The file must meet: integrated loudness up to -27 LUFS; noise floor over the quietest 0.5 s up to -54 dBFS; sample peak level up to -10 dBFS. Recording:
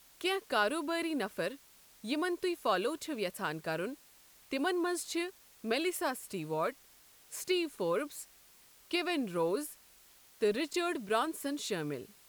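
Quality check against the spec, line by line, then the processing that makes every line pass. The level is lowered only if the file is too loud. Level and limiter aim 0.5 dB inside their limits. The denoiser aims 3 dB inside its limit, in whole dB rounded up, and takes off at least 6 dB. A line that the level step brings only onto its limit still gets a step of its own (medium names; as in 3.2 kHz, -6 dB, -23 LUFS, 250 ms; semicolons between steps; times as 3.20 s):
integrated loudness -34.5 LUFS: pass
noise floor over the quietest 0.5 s -61 dBFS: pass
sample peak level -16.5 dBFS: pass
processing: none needed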